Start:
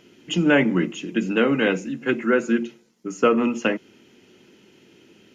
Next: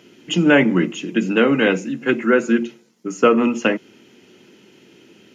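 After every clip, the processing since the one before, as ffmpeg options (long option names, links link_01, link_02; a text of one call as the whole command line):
ffmpeg -i in.wav -af "highpass=100,volume=4dB" out.wav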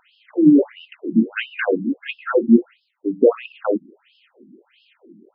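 ffmpeg -i in.wav -af "lowshelf=frequency=440:gain=8,afftfilt=real='re*between(b*sr/1024,230*pow(3800/230,0.5+0.5*sin(2*PI*1.5*pts/sr))/1.41,230*pow(3800/230,0.5+0.5*sin(2*PI*1.5*pts/sr))*1.41)':imag='im*between(b*sr/1024,230*pow(3800/230,0.5+0.5*sin(2*PI*1.5*pts/sr))/1.41,230*pow(3800/230,0.5+0.5*sin(2*PI*1.5*pts/sr))*1.41)':win_size=1024:overlap=0.75" out.wav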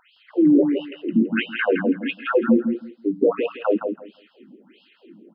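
ffmpeg -i in.wav -filter_complex "[0:a]alimiter=limit=-9.5dB:level=0:latency=1:release=25,asplit=2[link_01][link_02];[link_02]aecho=0:1:165|330|495:0.473|0.0852|0.0153[link_03];[link_01][link_03]amix=inputs=2:normalize=0" out.wav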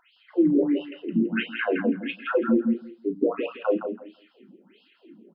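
ffmpeg -i in.wav -filter_complex "[0:a]flanger=delay=2.9:depth=2.9:regen=54:speed=1.2:shape=sinusoidal,asplit=2[link_01][link_02];[link_02]adelay=35,volume=-12dB[link_03];[link_01][link_03]amix=inputs=2:normalize=0" out.wav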